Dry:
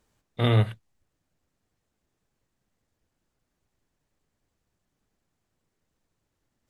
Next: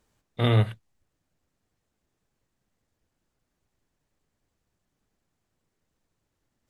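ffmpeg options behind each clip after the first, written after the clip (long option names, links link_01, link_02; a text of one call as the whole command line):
ffmpeg -i in.wav -af anull out.wav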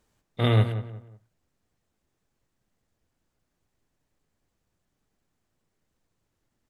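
ffmpeg -i in.wav -filter_complex "[0:a]asplit=2[link_01][link_02];[link_02]adelay=181,lowpass=frequency=1800:poles=1,volume=-11dB,asplit=2[link_03][link_04];[link_04]adelay=181,lowpass=frequency=1800:poles=1,volume=0.32,asplit=2[link_05][link_06];[link_06]adelay=181,lowpass=frequency=1800:poles=1,volume=0.32[link_07];[link_01][link_03][link_05][link_07]amix=inputs=4:normalize=0" out.wav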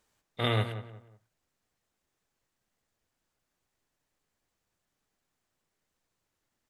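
ffmpeg -i in.wav -af "lowshelf=frequency=450:gain=-10" out.wav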